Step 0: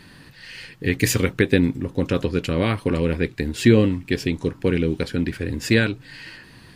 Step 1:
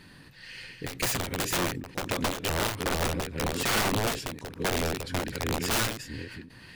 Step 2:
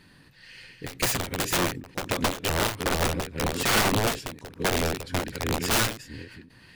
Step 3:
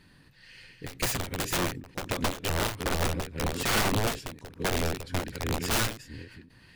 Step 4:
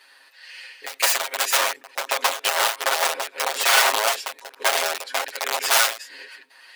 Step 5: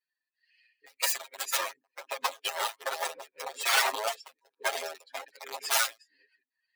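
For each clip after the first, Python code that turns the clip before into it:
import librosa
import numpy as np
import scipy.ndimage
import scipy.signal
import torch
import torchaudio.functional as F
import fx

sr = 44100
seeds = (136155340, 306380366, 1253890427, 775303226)

y1 = fx.reverse_delay(x, sr, ms=649, wet_db=-6.5)
y1 = (np.mod(10.0 ** (16.0 / 20.0) * y1 + 1.0, 2.0) - 1.0) / 10.0 ** (16.0 / 20.0)
y1 = fx.end_taper(y1, sr, db_per_s=100.0)
y1 = y1 * librosa.db_to_amplitude(-5.0)
y2 = fx.upward_expand(y1, sr, threshold_db=-40.0, expansion=1.5)
y2 = y2 * librosa.db_to_amplitude(4.5)
y3 = fx.low_shelf(y2, sr, hz=94.0, db=6.0)
y3 = y3 * librosa.db_to_amplitude(-4.0)
y4 = scipy.signal.sosfilt(scipy.signal.butter(4, 600.0, 'highpass', fs=sr, output='sos'), y3)
y4 = y4 + 0.92 * np.pad(y4, (int(7.4 * sr / 1000.0), 0))[:len(y4)]
y4 = y4 * librosa.db_to_amplitude(8.0)
y5 = fx.bin_expand(y4, sr, power=2.0)
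y5 = y5 * librosa.db_to_amplitude(-4.5)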